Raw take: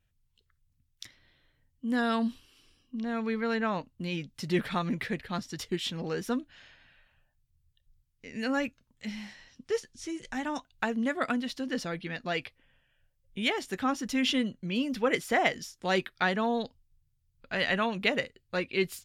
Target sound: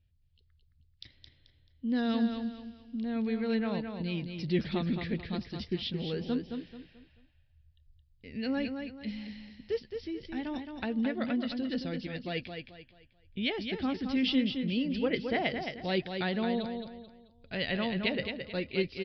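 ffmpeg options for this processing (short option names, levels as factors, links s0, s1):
-af "equalizer=f=1200:t=o:w=1.5:g=-13,aresample=11025,aresample=44100,equalizer=f=73:t=o:w=0.89:g=10.5,aecho=1:1:218|436|654|872:0.473|0.156|0.0515|0.017"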